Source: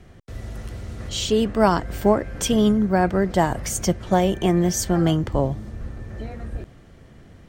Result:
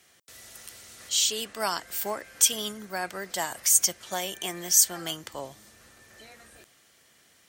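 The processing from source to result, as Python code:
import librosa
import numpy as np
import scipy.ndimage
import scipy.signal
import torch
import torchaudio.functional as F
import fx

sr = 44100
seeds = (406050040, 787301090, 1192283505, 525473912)

y = np.diff(x, prepend=0.0)
y = F.gain(torch.from_numpy(y), 7.5).numpy()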